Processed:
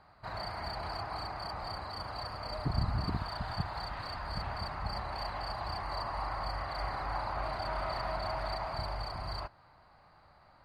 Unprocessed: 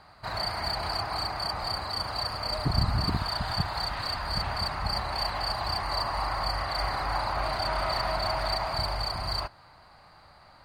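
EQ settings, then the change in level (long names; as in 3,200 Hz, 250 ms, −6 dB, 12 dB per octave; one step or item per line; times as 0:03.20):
high-shelf EQ 3,500 Hz −11.5 dB
−5.5 dB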